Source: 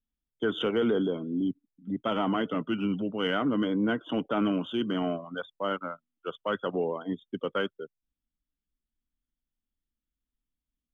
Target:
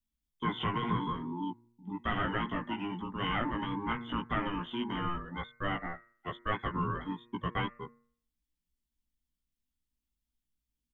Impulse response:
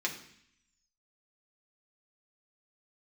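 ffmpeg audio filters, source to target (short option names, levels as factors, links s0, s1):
-filter_complex "[0:a]acrossover=split=2900[s0][s1];[s1]acompressor=threshold=0.00126:ratio=4:attack=1:release=60[s2];[s0][s2]amix=inputs=2:normalize=0,bandreject=f=117.2:t=h:w=4,bandreject=f=234.4:t=h:w=4,bandreject=f=351.6:t=h:w=4,bandreject=f=468.8:t=h:w=4,bandreject=f=586:t=h:w=4,bandreject=f=703.2:t=h:w=4,bandreject=f=820.4:t=h:w=4,bandreject=f=937.6:t=h:w=4,bandreject=f=1054.8:t=h:w=4,bandreject=f=1172:t=h:w=4,bandreject=f=1289.2:t=h:w=4,bandreject=f=1406.4:t=h:w=4,bandreject=f=1523.6:t=h:w=4,bandreject=f=1640.8:t=h:w=4,bandreject=f=1758:t=h:w=4,bandreject=f=1875.2:t=h:w=4,bandreject=f=1992.4:t=h:w=4,bandreject=f=2109.6:t=h:w=4,bandreject=f=2226.8:t=h:w=4,acrossover=split=360|1800[s3][s4][s5];[s3]acompressor=threshold=0.0126:ratio=6[s6];[s4]aeval=exprs='val(0)*sin(2*PI*610*n/s)':c=same[s7];[s6][s7][s5]amix=inputs=3:normalize=0,asplit=2[s8][s9];[s9]adelay=17,volume=0.75[s10];[s8][s10]amix=inputs=2:normalize=0"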